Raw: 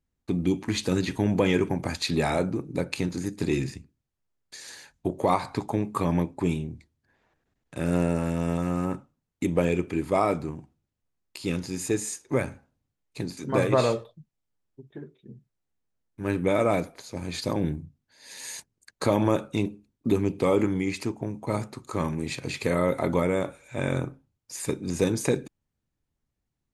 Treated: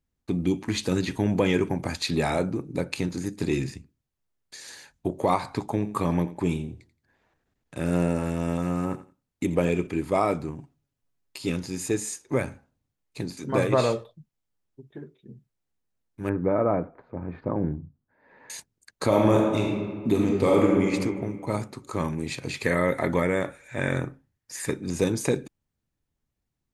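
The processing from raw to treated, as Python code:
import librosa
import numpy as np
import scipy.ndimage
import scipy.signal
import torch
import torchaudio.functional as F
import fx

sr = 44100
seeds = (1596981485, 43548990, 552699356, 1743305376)

y = fx.echo_feedback(x, sr, ms=86, feedback_pct=21, wet_db=-15.0, at=(5.73, 9.87))
y = fx.comb(y, sr, ms=7.2, depth=0.58, at=(10.58, 11.5))
y = fx.lowpass(y, sr, hz=1500.0, slope=24, at=(16.29, 18.5))
y = fx.reverb_throw(y, sr, start_s=19.07, length_s=1.84, rt60_s=1.6, drr_db=-1.0)
y = fx.peak_eq(y, sr, hz=1800.0, db=12.5, octaves=0.33, at=(22.63, 24.87))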